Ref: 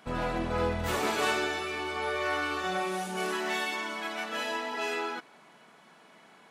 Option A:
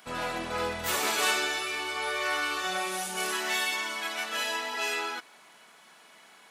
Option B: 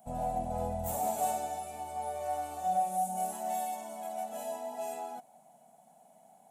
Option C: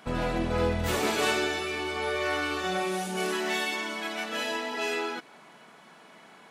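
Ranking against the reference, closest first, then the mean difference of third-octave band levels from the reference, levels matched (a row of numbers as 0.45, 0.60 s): C, A, B; 1.5, 5.0, 9.0 dB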